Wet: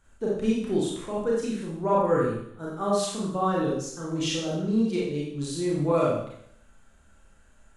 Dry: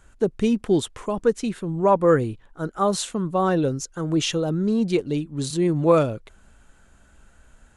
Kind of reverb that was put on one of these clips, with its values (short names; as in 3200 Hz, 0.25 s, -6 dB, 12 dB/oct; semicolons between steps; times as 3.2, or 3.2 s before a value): Schroeder reverb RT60 0.68 s, combs from 28 ms, DRR -5.5 dB; gain -10.5 dB